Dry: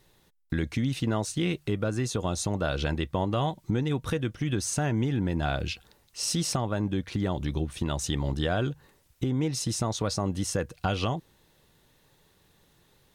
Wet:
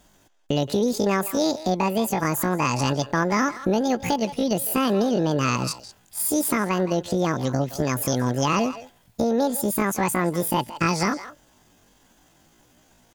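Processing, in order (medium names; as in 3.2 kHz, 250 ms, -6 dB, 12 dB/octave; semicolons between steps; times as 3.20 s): speakerphone echo 170 ms, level -11 dB; pitch shift +10 st; trim +5.5 dB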